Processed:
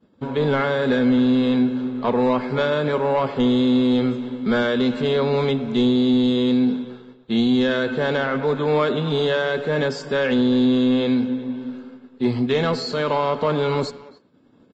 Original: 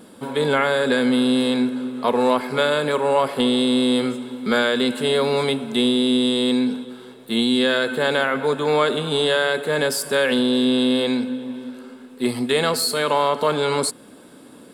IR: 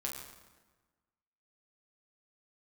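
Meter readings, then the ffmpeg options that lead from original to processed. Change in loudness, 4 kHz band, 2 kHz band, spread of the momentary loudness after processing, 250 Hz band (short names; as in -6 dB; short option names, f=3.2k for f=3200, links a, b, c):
-0.5 dB, -6.5 dB, -3.5 dB, 7 LU, +2.0 dB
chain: -filter_complex "[0:a]aemphasis=mode=reproduction:type=bsi,agate=range=-33dB:threshold=-31dB:ratio=3:detection=peak,acontrast=62,asplit=2[a][b];[b]adelay=280,highpass=300,lowpass=3.4k,asoftclip=type=hard:threshold=-10.5dB,volume=-18dB[c];[a][c]amix=inputs=2:normalize=0,asplit=2[d][e];[1:a]atrim=start_sample=2205,asetrate=79380,aresample=44100,lowpass=6.6k[f];[e][f]afir=irnorm=-1:irlink=0,volume=-14dB[g];[d][g]amix=inputs=2:normalize=0,volume=-8.5dB" -ar 16000 -c:a libvorbis -b:a 32k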